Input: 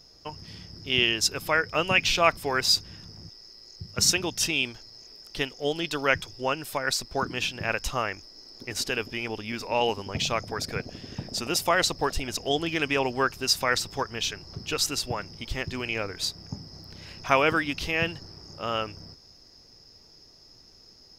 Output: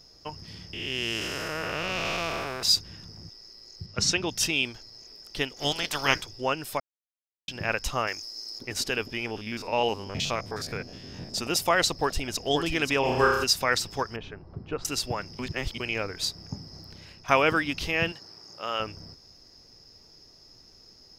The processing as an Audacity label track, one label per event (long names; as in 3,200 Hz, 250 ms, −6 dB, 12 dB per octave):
0.730000	2.630000	spectrum smeared in time width 489 ms
3.860000	4.290000	low-pass filter 5,400 Hz
5.560000	6.210000	ceiling on every frequency bin ceiling under each frame's peak by 22 dB
6.800000	7.480000	silence
8.070000	8.590000	bass and treble bass −8 dB, treble +13 dB
9.260000	11.340000	spectrum averaged block by block every 50 ms
11.930000	12.440000	delay throw 530 ms, feedback 30%, level −6 dB
13.000000	13.440000	flutter between parallel walls apart 5.5 metres, dies away in 0.9 s
14.160000	14.850000	low-pass filter 1,200 Hz
15.390000	15.800000	reverse
16.820000	17.280000	fade out, to −10 dB
18.120000	18.800000	high-pass filter 580 Hz 6 dB per octave